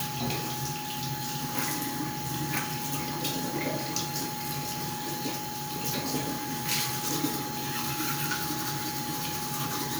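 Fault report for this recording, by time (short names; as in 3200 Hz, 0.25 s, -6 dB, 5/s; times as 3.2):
tone 840 Hz -37 dBFS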